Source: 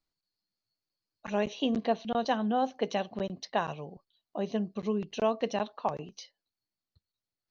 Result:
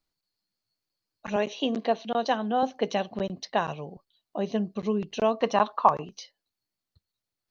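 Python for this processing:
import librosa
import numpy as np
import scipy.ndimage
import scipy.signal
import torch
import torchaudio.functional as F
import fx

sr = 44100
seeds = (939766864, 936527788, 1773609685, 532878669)

y = fx.highpass(x, sr, hz=250.0, slope=12, at=(1.36, 2.63))
y = fx.peak_eq(y, sr, hz=1100.0, db=13.5, octaves=0.92, at=(5.41, 6.05))
y = F.gain(torch.from_numpy(y), 3.5).numpy()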